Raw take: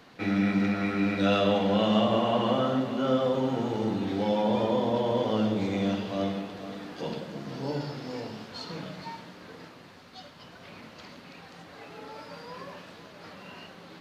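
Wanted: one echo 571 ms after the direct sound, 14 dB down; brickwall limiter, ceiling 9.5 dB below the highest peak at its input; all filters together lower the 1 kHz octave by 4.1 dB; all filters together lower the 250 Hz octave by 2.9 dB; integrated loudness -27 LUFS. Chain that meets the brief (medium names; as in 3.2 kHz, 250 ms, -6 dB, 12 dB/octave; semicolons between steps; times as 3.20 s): peaking EQ 250 Hz -3.5 dB; peaking EQ 1 kHz -5.5 dB; peak limiter -24 dBFS; delay 571 ms -14 dB; trim +7 dB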